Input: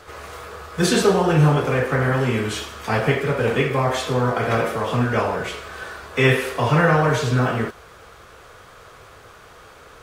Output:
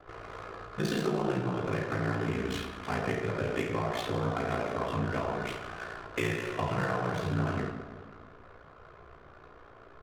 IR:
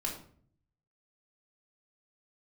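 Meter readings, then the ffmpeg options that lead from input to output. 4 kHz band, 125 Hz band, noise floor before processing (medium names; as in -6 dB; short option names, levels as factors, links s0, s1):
-13.0 dB, -13.0 dB, -46 dBFS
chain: -filter_complex "[0:a]acompressor=threshold=0.0708:ratio=3,aecho=1:1:162|324|486|648|810|972|1134:0.266|0.154|0.0895|0.0519|0.0301|0.0175|0.0101,aeval=exprs='val(0)*sin(2*PI*29*n/s)':c=same,adynamicsmooth=sensitivity=7.5:basefreq=1100,asplit=2[s0][s1];[1:a]atrim=start_sample=2205[s2];[s1][s2]afir=irnorm=-1:irlink=0,volume=0.794[s3];[s0][s3]amix=inputs=2:normalize=0,volume=0.355"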